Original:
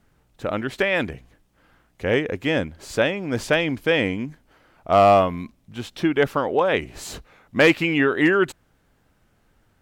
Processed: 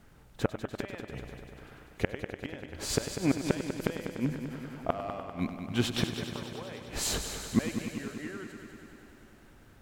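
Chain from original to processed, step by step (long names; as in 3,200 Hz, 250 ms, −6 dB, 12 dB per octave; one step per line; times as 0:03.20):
gate with flip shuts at −16 dBFS, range −29 dB
echo machine with several playback heads 98 ms, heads first and second, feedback 73%, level −11.5 dB
level +4 dB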